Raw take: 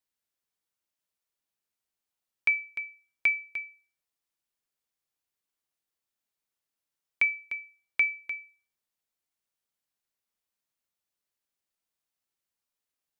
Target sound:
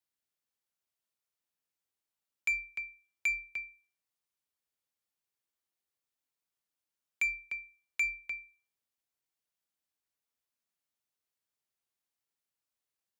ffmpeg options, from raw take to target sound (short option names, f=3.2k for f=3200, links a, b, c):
-af "aeval=exprs='0.188*(cos(1*acos(clip(val(0)/0.188,-1,1)))-cos(1*PI/2))+0.00335*(cos(6*acos(clip(val(0)/0.188,-1,1)))-cos(6*PI/2))':c=same,afreqshift=39,asoftclip=type=tanh:threshold=-21dB,volume=-3dB"